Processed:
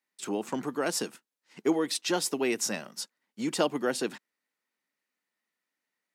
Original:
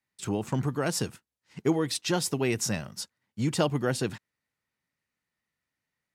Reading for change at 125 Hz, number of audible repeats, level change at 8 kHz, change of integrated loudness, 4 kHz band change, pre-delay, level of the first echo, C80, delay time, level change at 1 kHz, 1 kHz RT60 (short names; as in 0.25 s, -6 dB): -15.0 dB, none, 0.0 dB, -1.0 dB, 0.0 dB, none, none, none, none, 0.0 dB, none